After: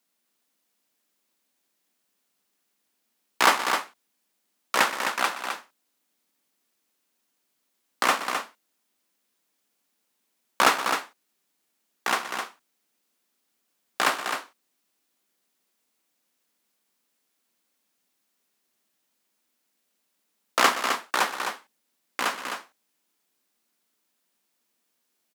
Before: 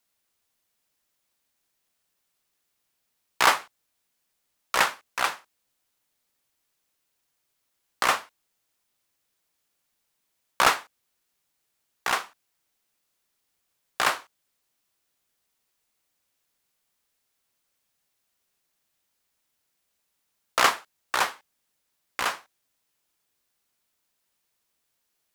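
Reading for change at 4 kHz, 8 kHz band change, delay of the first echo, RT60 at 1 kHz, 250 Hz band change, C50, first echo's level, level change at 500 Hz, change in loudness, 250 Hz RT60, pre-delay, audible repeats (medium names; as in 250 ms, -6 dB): +1.0 dB, +1.0 dB, 121 ms, no reverb, +6.0 dB, no reverb, -15.0 dB, +2.5 dB, 0.0 dB, no reverb, no reverb, 3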